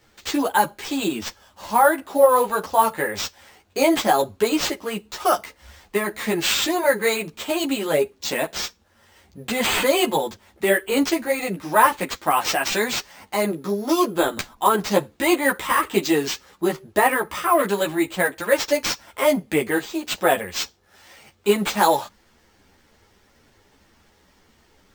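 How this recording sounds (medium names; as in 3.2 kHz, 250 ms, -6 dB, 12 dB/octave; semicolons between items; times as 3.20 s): aliases and images of a low sample rate 11 kHz, jitter 0%; a shimmering, thickened sound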